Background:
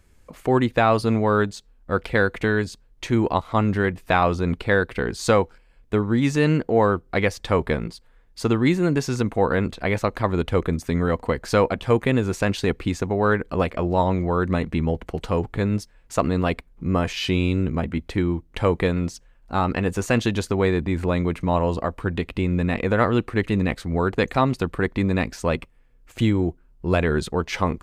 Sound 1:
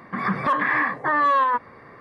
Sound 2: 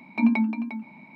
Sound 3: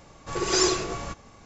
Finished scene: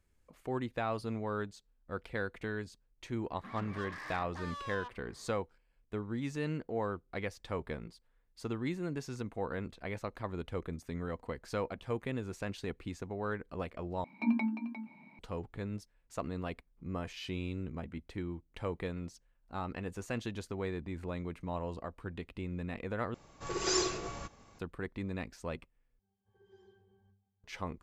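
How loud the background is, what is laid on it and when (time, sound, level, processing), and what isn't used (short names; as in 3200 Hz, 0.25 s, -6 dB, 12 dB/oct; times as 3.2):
background -17 dB
3.31 add 1 -18 dB + soft clip -24.5 dBFS
14.04 replace with 2 -9.5 dB
23.14 replace with 3 -8.5 dB
25.99 replace with 3 -18 dB + octave resonator G, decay 0.47 s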